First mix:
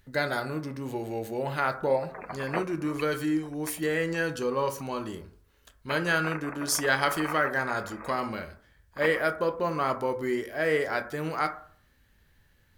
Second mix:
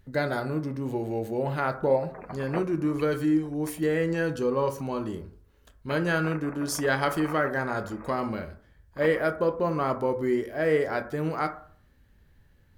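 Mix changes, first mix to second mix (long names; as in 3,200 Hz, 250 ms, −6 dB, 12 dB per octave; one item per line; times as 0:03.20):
background −3.0 dB
master: add tilt shelving filter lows +5 dB, about 900 Hz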